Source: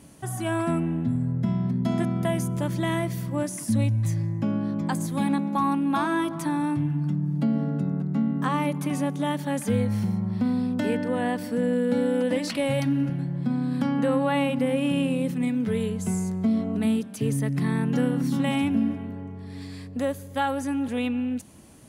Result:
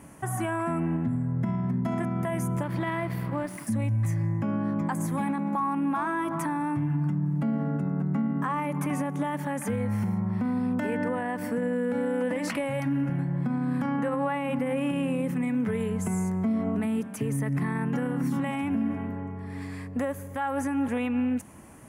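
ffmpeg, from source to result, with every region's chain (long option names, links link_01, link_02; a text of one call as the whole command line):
ffmpeg -i in.wav -filter_complex "[0:a]asettb=1/sr,asplit=3[link_01][link_02][link_03];[link_01]atrim=end=2.634[link_04];[link_02]atrim=start=2.63:end=3.67,asetpts=PTS-STARTPTS,afade=type=in:duration=0.004:curve=qsin,afade=type=out:start_time=1.036:duration=0.004:curve=qsin,aeval=exprs='sgn(val(0))*max(abs(val(0))-0.00708,0)':channel_layout=same,highshelf=frequency=5300:width_type=q:width=3:gain=-6[link_05];[link_03]atrim=start=3.666[link_06];[link_04][link_05]acrossfade=duration=0.004:curve1=hsin:curve2=qsin[link_07];[link_07][link_06]acrossfade=duration=0.004:curve1=qsin:curve2=hsin,equalizer=frequency=1000:width_type=o:width=1:gain=6,equalizer=frequency=2000:width_type=o:width=1:gain=6,equalizer=frequency=4000:width_type=o:width=1:gain=-12,alimiter=limit=-21dB:level=0:latency=1:release=98,volume=1dB" out.wav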